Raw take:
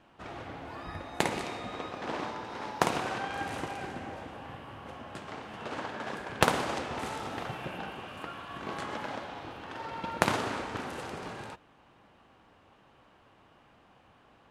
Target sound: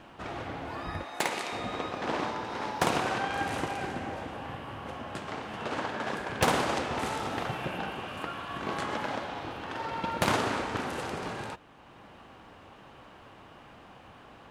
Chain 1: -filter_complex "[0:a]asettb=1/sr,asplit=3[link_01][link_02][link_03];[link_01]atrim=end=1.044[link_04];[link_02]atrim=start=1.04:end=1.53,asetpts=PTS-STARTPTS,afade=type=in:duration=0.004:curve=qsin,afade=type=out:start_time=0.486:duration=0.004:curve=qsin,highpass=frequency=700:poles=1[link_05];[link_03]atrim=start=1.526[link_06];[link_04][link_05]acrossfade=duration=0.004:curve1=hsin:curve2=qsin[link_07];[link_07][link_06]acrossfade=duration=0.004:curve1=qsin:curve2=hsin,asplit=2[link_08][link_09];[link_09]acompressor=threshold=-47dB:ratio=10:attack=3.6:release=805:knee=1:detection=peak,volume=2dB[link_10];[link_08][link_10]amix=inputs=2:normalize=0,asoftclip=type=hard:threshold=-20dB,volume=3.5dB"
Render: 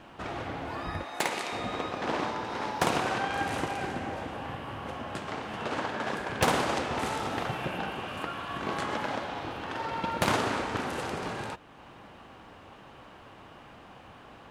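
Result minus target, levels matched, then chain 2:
downward compressor: peak gain reduction −8.5 dB
-filter_complex "[0:a]asettb=1/sr,asplit=3[link_01][link_02][link_03];[link_01]atrim=end=1.044[link_04];[link_02]atrim=start=1.04:end=1.53,asetpts=PTS-STARTPTS,afade=type=in:duration=0.004:curve=qsin,afade=type=out:start_time=0.486:duration=0.004:curve=qsin,highpass=frequency=700:poles=1[link_05];[link_03]atrim=start=1.526[link_06];[link_04][link_05]acrossfade=duration=0.004:curve1=hsin:curve2=qsin[link_07];[link_07][link_06]acrossfade=duration=0.004:curve1=qsin:curve2=hsin,asplit=2[link_08][link_09];[link_09]acompressor=threshold=-56.5dB:ratio=10:attack=3.6:release=805:knee=1:detection=peak,volume=2dB[link_10];[link_08][link_10]amix=inputs=2:normalize=0,asoftclip=type=hard:threshold=-20dB,volume=3.5dB"

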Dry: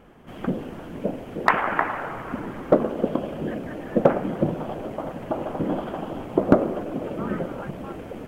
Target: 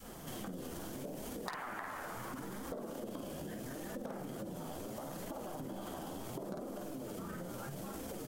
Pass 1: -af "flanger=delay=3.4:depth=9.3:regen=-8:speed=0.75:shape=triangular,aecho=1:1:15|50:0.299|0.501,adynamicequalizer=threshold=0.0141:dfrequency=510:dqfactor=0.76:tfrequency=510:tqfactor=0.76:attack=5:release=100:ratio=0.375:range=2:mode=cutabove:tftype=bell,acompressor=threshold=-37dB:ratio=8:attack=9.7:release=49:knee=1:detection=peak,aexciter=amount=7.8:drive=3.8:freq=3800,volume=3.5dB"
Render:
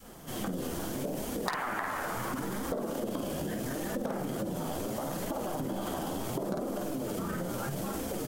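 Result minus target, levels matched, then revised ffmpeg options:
downward compressor: peak gain reduction −9 dB
-af "flanger=delay=3.4:depth=9.3:regen=-8:speed=0.75:shape=triangular,aecho=1:1:15|50:0.299|0.501,adynamicequalizer=threshold=0.0141:dfrequency=510:dqfactor=0.76:tfrequency=510:tqfactor=0.76:attack=5:release=100:ratio=0.375:range=2:mode=cutabove:tftype=bell,acompressor=threshold=-47.5dB:ratio=8:attack=9.7:release=49:knee=1:detection=peak,aexciter=amount=7.8:drive=3.8:freq=3800,volume=3.5dB"

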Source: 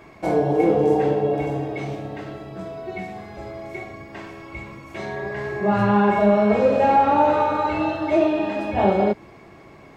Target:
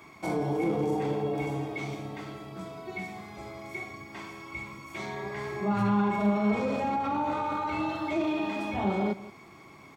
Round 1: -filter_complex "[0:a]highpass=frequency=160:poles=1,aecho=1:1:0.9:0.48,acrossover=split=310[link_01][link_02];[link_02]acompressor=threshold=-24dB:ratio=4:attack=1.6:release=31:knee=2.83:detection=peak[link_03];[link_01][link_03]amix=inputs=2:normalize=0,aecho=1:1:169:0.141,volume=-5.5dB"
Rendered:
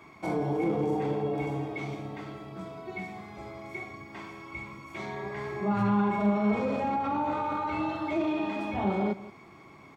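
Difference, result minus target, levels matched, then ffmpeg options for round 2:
8,000 Hz band −6.0 dB
-filter_complex "[0:a]highpass=frequency=160:poles=1,highshelf=frequency=4300:gain=8.5,aecho=1:1:0.9:0.48,acrossover=split=310[link_01][link_02];[link_02]acompressor=threshold=-24dB:ratio=4:attack=1.6:release=31:knee=2.83:detection=peak[link_03];[link_01][link_03]amix=inputs=2:normalize=0,aecho=1:1:169:0.141,volume=-5.5dB"

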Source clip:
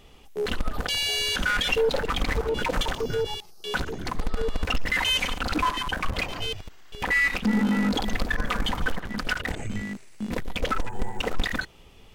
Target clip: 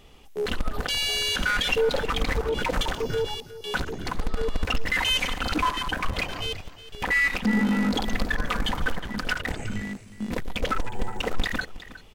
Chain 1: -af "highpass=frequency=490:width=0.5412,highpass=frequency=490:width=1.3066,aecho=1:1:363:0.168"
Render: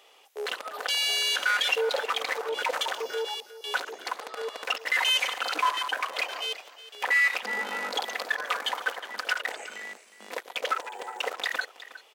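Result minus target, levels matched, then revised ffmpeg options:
500 Hz band −3.0 dB
-af "aecho=1:1:363:0.168"

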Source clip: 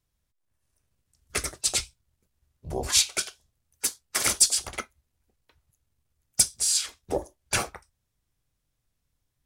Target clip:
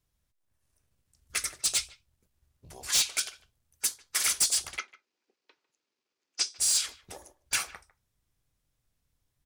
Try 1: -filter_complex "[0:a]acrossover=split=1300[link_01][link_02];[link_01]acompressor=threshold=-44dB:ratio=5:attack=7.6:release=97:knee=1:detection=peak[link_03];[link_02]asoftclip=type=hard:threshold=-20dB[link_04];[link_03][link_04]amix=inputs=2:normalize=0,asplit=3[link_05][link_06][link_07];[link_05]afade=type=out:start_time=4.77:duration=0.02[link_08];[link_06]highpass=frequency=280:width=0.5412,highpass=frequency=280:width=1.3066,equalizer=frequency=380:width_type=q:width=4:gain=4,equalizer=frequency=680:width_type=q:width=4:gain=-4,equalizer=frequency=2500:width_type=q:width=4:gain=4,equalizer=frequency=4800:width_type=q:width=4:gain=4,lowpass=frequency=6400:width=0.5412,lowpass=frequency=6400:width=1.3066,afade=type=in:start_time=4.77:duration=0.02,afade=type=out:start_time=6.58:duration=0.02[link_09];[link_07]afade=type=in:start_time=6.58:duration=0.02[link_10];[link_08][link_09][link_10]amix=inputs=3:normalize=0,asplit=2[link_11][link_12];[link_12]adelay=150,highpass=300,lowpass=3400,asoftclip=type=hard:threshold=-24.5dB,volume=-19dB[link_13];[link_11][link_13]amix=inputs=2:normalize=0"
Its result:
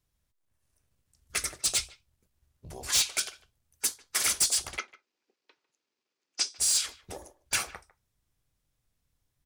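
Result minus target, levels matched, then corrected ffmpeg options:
downward compressor: peak gain reduction −7 dB
-filter_complex "[0:a]acrossover=split=1300[link_01][link_02];[link_01]acompressor=threshold=-52.5dB:ratio=5:attack=7.6:release=97:knee=1:detection=peak[link_03];[link_02]asoftclip=type=hard:threshold=-20dB[link_04];[link_03][link_04]amix=inputs=2:normalize=0,asplit=3[link_05][link_06][link_07];[link_05]afade=type=out:start_time=4.77:duration=0.02[link_08];[link_06]highpass=frequency=280:width=0.5412,highpass=frequency=280:width=1.3066,equalizer=frequency=380:width_type=q:width=4:gain=4,equalizer=frequency=680:width_type=q:width=4:gain=-4,equalizer=frequency=2500:width_type=q:width=4:gain=4,equalizer=frequency=4800:width_type=q:width=4:gain=4,lowpass=frequency=6400:width=0.5412,lowpass=frequency=6400:width=1.3066,afade=type=in:start_time=4.77:duration=0.02,afade=type=out:start_time=6.58:duration=0.02[link_09];[link_07]afade=type=in:start_time=6.58:duration=0.02[link_10];[link_08][link_09][link_10]amix=inputs=3:normalize=0,asplit=2[link_11][link_12];[link_12]adelay=150,highpass=300,lowpass=3400,asoftclip=type=hard:threshold=-24.5dB,volume=-19dB[link_13];[link_11][link_13]amix=inputs=2:normalize=0"

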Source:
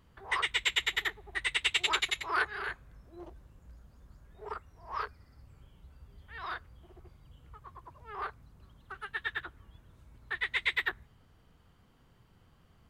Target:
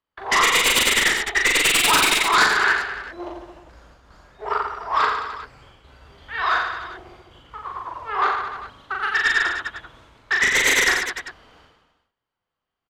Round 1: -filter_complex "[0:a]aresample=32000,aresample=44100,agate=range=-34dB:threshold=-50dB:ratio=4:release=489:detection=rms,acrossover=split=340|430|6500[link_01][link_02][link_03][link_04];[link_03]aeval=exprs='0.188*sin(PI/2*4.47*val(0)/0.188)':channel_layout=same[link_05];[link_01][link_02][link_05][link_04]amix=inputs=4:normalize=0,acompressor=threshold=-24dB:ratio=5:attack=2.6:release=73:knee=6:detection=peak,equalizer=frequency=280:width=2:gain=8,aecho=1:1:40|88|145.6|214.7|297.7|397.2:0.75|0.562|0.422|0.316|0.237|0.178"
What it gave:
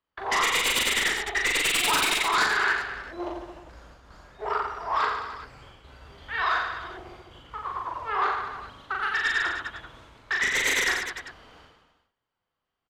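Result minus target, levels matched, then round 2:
downward compressor: peak gain reduction +7.5 dB
-filter_complex "[0:a]aresample=32000,aresample=44100,agate=range=-34dB:threshold=-50dB:ratio=4:release=489:detection=rms,acrossover=split=340|430|6500[link_01][link_02][link_03][link_04];[link_03]aeval=exprs='0.188*sin(PI/2*4.47*val(0)/0.188)':channel_layout=same[link_05];[link_01][link_02][link_05][link_04]amix=inputs=4:normalize=0,equalizer=frequency=280:width=2:gain=8,aecho=1:1:40|88|145.6|214.7|297.7|397.2:0.75|0.562|0.422|0.316|0.237|0.178"

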